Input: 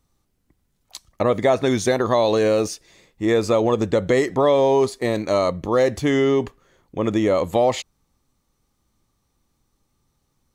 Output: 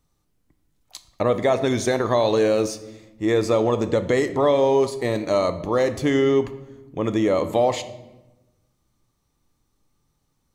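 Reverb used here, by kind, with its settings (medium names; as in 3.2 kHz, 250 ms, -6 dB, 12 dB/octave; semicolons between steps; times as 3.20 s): simulated room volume 480 m³, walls mixed, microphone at 0.41 m; trim -2 dB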